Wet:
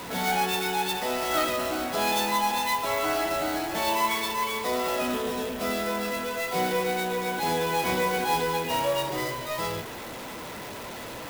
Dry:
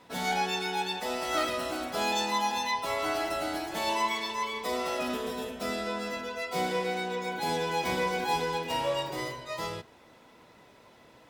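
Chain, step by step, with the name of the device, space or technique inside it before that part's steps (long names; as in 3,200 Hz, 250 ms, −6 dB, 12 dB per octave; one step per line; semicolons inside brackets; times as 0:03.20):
early CD player with a faulty converter (converter with a step at zero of −35 dBFS; converter with an unsteady clock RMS 0.028 ms)
level +2 dB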